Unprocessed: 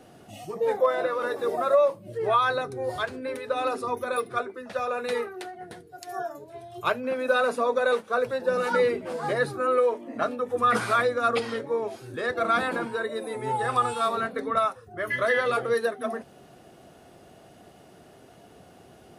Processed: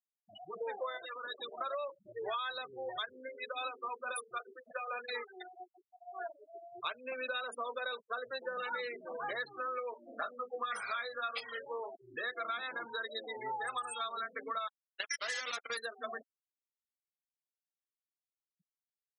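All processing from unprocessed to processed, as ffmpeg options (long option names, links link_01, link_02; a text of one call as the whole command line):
ffmpeg -i in.wav -filter_complex "[0:a]asettb=1/sr,asplit=3[link_01][link_02][link_03];[link_01]atrim=end=0.974[link_04];[link_02]atrim=start=0.97:end=1.61,asetpts=PTS-STARTPTS,afade=type=in:duration=0.004:curve=qsin,afade=type=out:start_time=0.636:duration=0.004:curve=qsin,acrossover=split=210|3000[link_05][link_06][link_07];[link_06]acompressor=threshold=-36dB:ratio=8:attack=3.2:release=140:knee=2.83:detection=peak[link_08];[link_05][link_08][link_07]amix=inputs=3:normalize=0,acrusher=bits=7:dc=4:mix=0:aa=0.000001,equalizer=frequency=2400:width_type=o:width=1.4:gain=3[link_09];[link_03]atrim=start=1.606[link_10];[link_04][link_09]acrossfade=duration=0.004:curve1=hsin:curve2=qsin[link_11];[link_11][link_10]acrossfade=duration=0.004:curve1=qsin:curve2=hsin,asettb=1/sr,asplit=3[link_12][link_13][link_14];[link_12]atrim=end=3.224[link_15];[link_13]atrim=start=3.22:end=6.39,asetpts=PTS-STARTPTS,afade=type=in:duration=0.004:curve=qsin,afade=type=out:start_time=3.166:duration=0.004:curve=qsin,bandreject=frequency=50:width_type=h:width=6,bandreject=frequency=100:width_type=h:width=6,bandreject=frequency=150:width_type=h:width=6,bandreject=frequency=200:width_type=h:width=6,bandreject=frequency=250:width_type=h:width=6,bandreject=frequency=300:width_type=h:width=6,bandreject=frequency=350:width_type=h:width=6,bandreject=frequency=400:width_type=h:width=6,bandreject=frequency=450:width_type=h:width=6,bandreject=frequency=500:width_type=h:width=6,tremolo=f=4.6:d=0.53[link_16];[link_14]atrim=start=6.386[link_17];[link_15][link_16]acrossfade=duration=0.004:curve1=hsin:curve2=qsin[link_18];[link_18][link_17]acrossfade=duration=0.004:curve1=qsin:curve2=hsin,asettb=1/sr,asplit=3[link_19][link_20][link_21];[link_19]atrim=end=9.944[link_22];[link_20]atrim=start=9.94:end=11.94,asetpts=PTS-STARTPTS,afade=type=in:duration=0.004:curve=qsin,afade=type=out:start_time=1.996:duration=0.004:curve=qsin,adynamicequalizer=threshold=0.00891:dfrequency=310:dqfactor=1.6:tfrequency=310:tqfactor=1.6:attack=5:release=100:ratio=0.375:range=3:mode=cutabove:tftype=bell,bandreject=frequency=50:width_type=h:width=6,bandreject=frequency=100:width_type=h:width=6,bandreject=frequency=150:width_type=h:width=6,bandreject=frequency=200:width_type=h:width=6,bandreject=frequency=250:width_type=h:width=6,bandreject=frequency=300:width_type=h:width=6,bandreject=frequency=350:width_type=h:width=6,asplit=2[link_23][link_24];[link_24]adelay=20,volume=-6dB[link_25];[link_23][link_25]amix=inputs=2:normalize=0,atrim=end_sample=88200[link_26];[link_21]atrim=start=11.936[link_27];[link_22][link_26]acrossfade=duration=0.004:curve1=hsin:curve2=qsin[link_28];[link_28][link_27]acrossfade=duration=0.004:curve1=qsin:curve2=hsin,asettb=1/sr,asplit=3[link_29][link_30][link_31];[link_29]atrim=end=14.674[link_32];[link_30]atrim=start=14.67:end=15.77,asetpts=PTS-STARTPTS,afade=type=in:duration=0.004:curve=qsin,afade=type=out:start_time=1.096:duration=0.004:curve=qsin,bandreject=frequency=50:width_type=h:width=6,bandreject=frequency=100:width_type=h:width=6,bandreject=frequency=150:width_type=h:width=6,bandreject=frequency=200:width_type=h:width=6,bandreject=frequency=250:width_type=h:width=6,bandreject=frequency=300:width_type=h:width=6,bandreject=frequency=350:width_type=h:width=6,adynamicequalizer=threshold=0.00891:dfrequency=340:dqfactor=1.3:tfrequency=340:tqfactor=1.3:attack=5:release=100:ratio=0.375:range=1.5:mode=cutabove:tftype=bell,acrusher=bits=3:mix=0:aa=0.5[link_33];[link_31]atrim=start=15.766[link_34];[link_32][link_33]acrossfade=duration=0.004:curve1=hsin:curve2=qsin[link_35];[link_35][link_34]acrossfade=duration=0.004:curve1=qsin:curve2=hsin,afftfilt=real='re*gte(hypot(re,im),0.0316)':imag='im*gte(hypot(re,im),0.0316)':win_size=1024:overlap=0.75,aderivative,acompressor=threshold=-49dB:ratio=6,volume=13dB" out.wav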